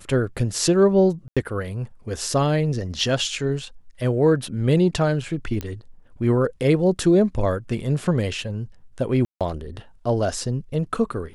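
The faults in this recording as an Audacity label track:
1.280000	1.370000	gap 86 ms
5.610000	5.610000	pop -15 dBFS
9.250000	9.410000	gap 0.157 s

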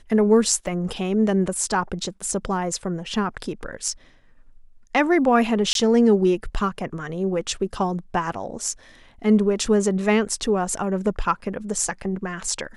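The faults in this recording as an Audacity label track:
0.670000	0.670000	gap 2.4 ms
5.730000	5.750000	gap 22 ms

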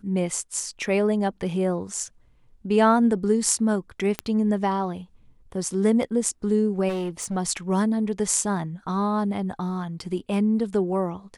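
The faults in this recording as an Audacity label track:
4.190000	4.190000	pop -10 dBFS
6.880000	7.370000	clipped -24.5 dBFS

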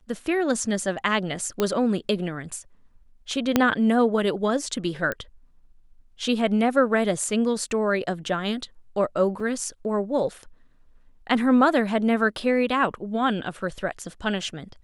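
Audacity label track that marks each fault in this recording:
1.600000	1.600000	pop -9 dBFS
3.560000	3.560000	pop -4 dBFS
5.120000	5.120000	pop -14 dBFS
9.400000	9.400000	gap 3.2 ms

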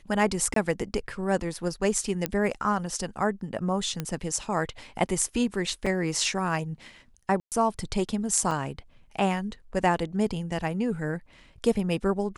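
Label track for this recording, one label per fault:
0.540000	0.560000	gap 23 ms
2.260000	2.260000	pop -10 dBFS
4.000000	4.000000	pop -15 dBFS
5.860000	5.870000	gap 5 ms
7.400000	7.520000	gap 0.118 s
8.510000	8.510000	gap 3.4 ms

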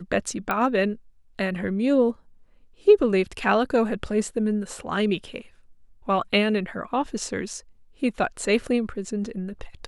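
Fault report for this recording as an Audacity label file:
0.510000	0.510000	pop -12 dBFS

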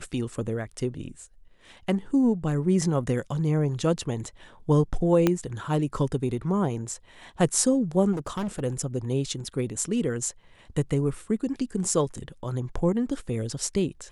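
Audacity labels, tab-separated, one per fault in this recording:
5.270000	5.270000	pop -8 dBFS
8.120000	8.600000	clipped -26.5 dBFS

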